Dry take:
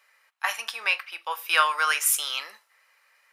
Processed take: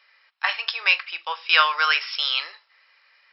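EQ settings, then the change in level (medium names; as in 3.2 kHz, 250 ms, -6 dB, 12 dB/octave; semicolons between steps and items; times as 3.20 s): brick-wall FIR band-pass 280–5500 Hz; treble shelf 2.5 kHz +11 dB; 0.0 dB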